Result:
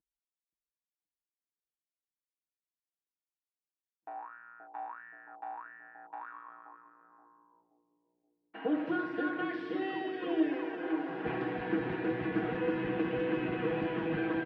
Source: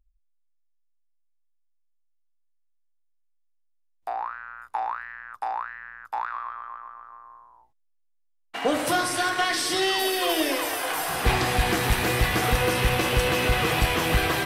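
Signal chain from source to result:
loudspeaker in its box 210–2,100 Hz, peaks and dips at 220 Hz +8 dB, 320 Hz +5 dB, 580 Hz −8 dB, 860 Hz −5 dB, 1,200 Hz −10 dB, 2,100 Hz −8 dB
comb filter 6.3 ms
bucket-brigade delay 526 ms, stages 2,048, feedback 65%, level −5 dB
level −9 dB

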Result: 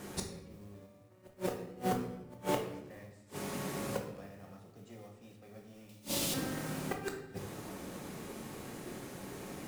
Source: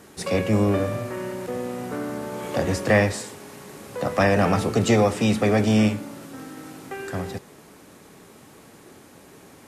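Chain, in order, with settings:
gate with flip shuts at −22 dBFS, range −37 dB
noise that follows the level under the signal 16 dB
0:05.89–0:06.34: high shelf with overshoot 2,300 Hz +13 dB, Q 1.5
rectangular room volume 340 cubic metres, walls mixed, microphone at 0.93 metres
in parallel at −11 dB: sample-and-hold swept by an LFO 23×, swing 60% 0.36 Hz
on the sum: level −1 dB

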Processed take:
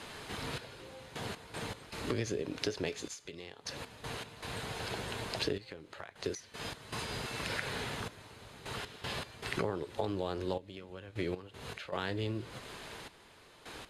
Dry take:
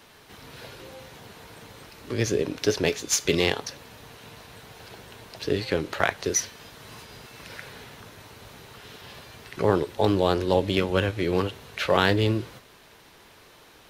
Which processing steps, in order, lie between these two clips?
low-pass filter 11,000 Hz 24 dB per octave
notch filter 5,700 Hz, Q 9.6
downward compressor 16 to 1, threshold −37 dBFS, peak gain reduction 22.5 dB
gate pattern "xxx...x.x.xxx" 78 BPM −12 dB
level +6 dB

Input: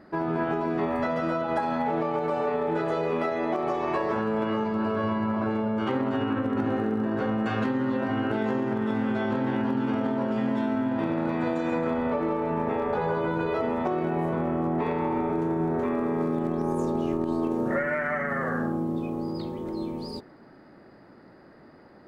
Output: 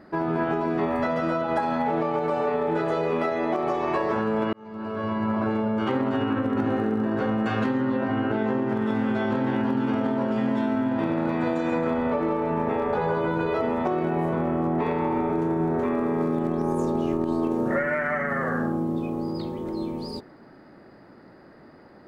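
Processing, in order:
0:04.53–0:05.30: fade in
0:07.80–0:08.68: low-pass filter 3,900 Hz → 2,400 Hz 6 dB per octave
level +2 dB

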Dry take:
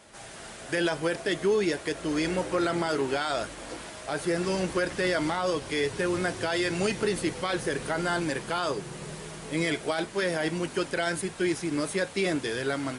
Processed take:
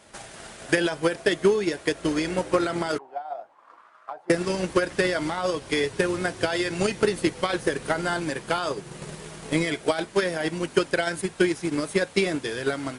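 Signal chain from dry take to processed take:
0:02.98–0:04.30: envelope filter 750–1,500 Hz, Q 6.5, down, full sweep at −27 dBFS
transient designer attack +10 dB, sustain −3 dB

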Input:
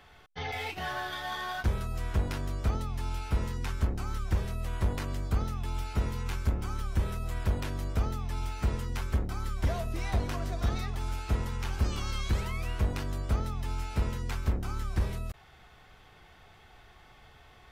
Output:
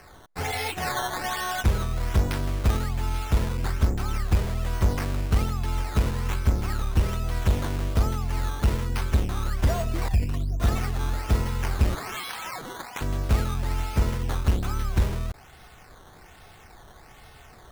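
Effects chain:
0:10.08–0:10.60: spectral envelope exaggerated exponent 2
0:11.95–0:13.01: Butterworth high-pass 720 Hz 96 dB per octave
sample-and-hold swept by an LFO 12×, swing 100% 1.2 Hz
level +6.5 dB

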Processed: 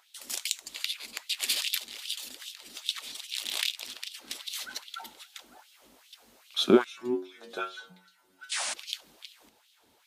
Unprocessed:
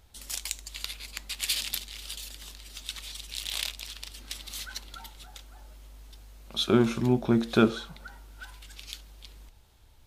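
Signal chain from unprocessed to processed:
0:08.49–0:08.74: sound drawn into the spectrogram noise 540–10,000 Hz −33 dBFS
auto-filter high-pass sine 2.5 Hz 220–3,400 Hz
0:06.84–0:08.52: stiff-string resonator 91 Hz, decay 0.36 s, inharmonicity 0.002

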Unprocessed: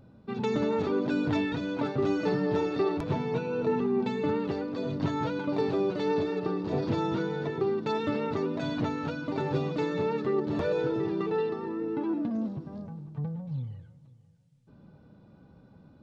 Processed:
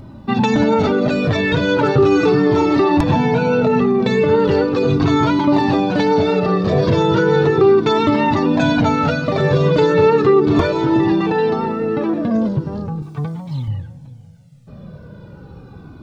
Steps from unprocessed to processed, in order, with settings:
0:13.02–0:13.68: spectral tilt +2.5 dB per octave
boost into a limiter +22.5 dB
flanger whose copies keep moving one way falling 0.37 Hz

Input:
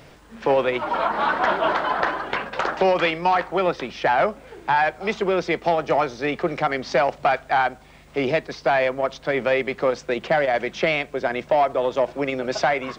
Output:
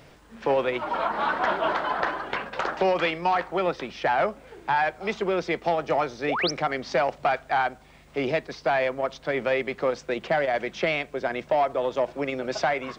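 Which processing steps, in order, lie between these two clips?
sound drawn into the spectrogram rise, 0:06.28–0:06.51, 410–6,400 Hz −23 dBFS
level −4 dB

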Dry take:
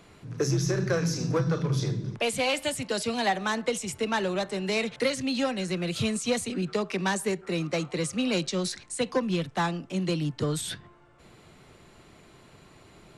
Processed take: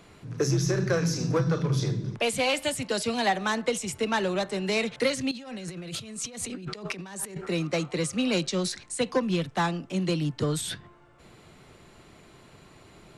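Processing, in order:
0:05.31–0:07.47: compressor whose output falls as the input rises −39 dBFS, ratio −1
level +1 dB

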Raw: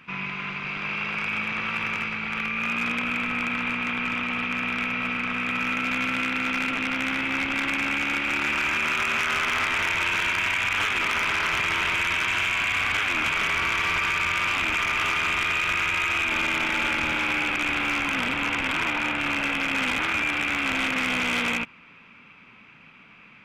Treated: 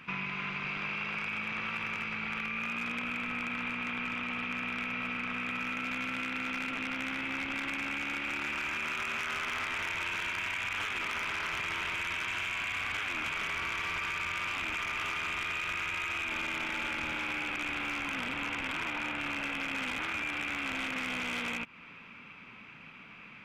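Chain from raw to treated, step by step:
downward compressor, threshold −33 dBFS, peak gain reduction 10.5 dB

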